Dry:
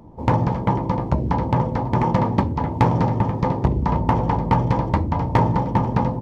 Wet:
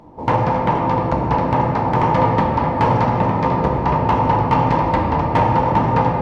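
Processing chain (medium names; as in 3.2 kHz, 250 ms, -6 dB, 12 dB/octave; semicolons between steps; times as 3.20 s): overdrive pedal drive 12 dB, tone 3.5 kHz, clips at -7.5 dBFS; simulated room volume 220 m³, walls hard, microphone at 0.49 m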